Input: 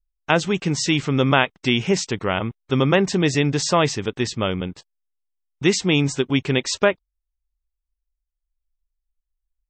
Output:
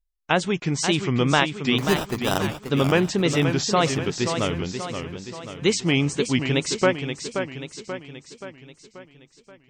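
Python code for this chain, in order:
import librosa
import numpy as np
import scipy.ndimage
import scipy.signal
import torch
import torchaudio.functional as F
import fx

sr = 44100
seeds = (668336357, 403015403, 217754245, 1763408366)

y = fx.wow_flutter(x, sr, seeds[0], rate_hz=2.1, depth_cents=150.0)
y = fx.sample_hold(y, sr, seeds[1], rate_hz=2200.0, jitter_pct=0, at=(1.78, 2.38))
y = fx.echo_warbled(y, sr, ms=531, feedback_pct=53, rate_hz=2.8, cents=145, wet_db=-7.5)
y = y * 10.0 ** (-2.5 / 20.0)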